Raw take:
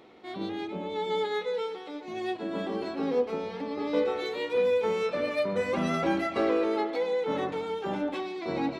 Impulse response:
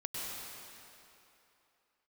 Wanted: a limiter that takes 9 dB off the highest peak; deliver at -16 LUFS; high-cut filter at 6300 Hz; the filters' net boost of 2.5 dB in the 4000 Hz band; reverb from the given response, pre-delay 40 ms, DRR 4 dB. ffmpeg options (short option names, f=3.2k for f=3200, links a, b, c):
-filter_complex "[0:a]lowpass=6.3k,equalizer=f=4k:t=o:g=3.5,alimiter=limit=-23.5dB:level=0:latency=1,asplit=2[a][b];[1:a]atrim=start_sample=2205,adelay=40[c];[b][c]afir=irnorm=-1:irlink=0,volume=-6.5dB[d];[a][d]amix=inputs=2:normalize=0,volume=15dB"